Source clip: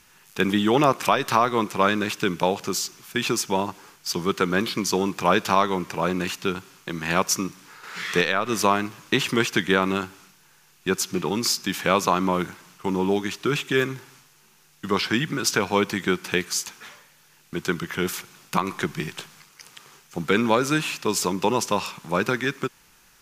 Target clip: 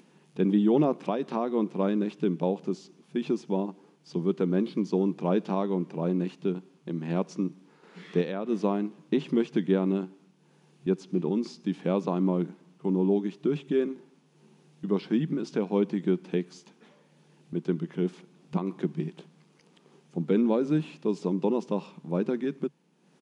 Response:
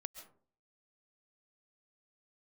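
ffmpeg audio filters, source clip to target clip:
-filter_complex "[0:a]acrossover=split=7000[link_01][link_02];[link_02]acompressor=threshold=-44dB:ratio=4:attack=1:release=60[link_03];[link_01][link_03]amix=inputs=2:normalize=0,afftfilt=real='re*between(b*sr/4096,150,11000)':imag='im*between(b*sr/4096,150,11000)':win_size=4096:overlap=0.75,acompressor=mode=upward:threshold=-38dB:ratio=2.5,firequalizer=gain_entry='entry(280,0);entry(1300,-21);entry(3300,-18);entry(5800,-24)':delay=0.05:min_phase=1"

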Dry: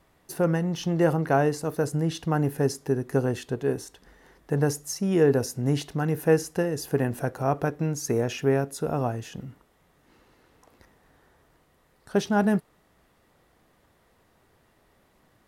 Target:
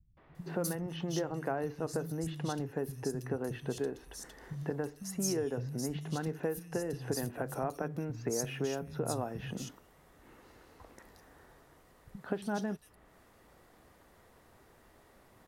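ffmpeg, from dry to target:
ffmpeg -i in.wav -filter_complex "[0:a]acompressor=threshold=-33dB:ratio=10,acrossover=split=150|3200[link_01][link_02][link_03];[link_02]adelay=170[link_04];[link_03]adelay=350[link_05];[link_01][link_04][link_05]amix=inputs=3:normalize=0,volume=2.5dB" out.wav

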